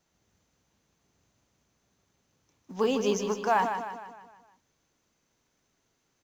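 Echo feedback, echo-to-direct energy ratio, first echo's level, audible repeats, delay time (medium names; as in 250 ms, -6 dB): 49%, -6.5 dB, -7.5 dB, 5, 154 ms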